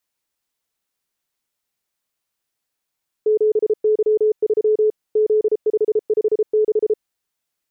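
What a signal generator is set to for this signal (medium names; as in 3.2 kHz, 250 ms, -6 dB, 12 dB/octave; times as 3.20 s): Morse "7Y3 Z556" 33 wpm 429 Hz -12.5 dBFS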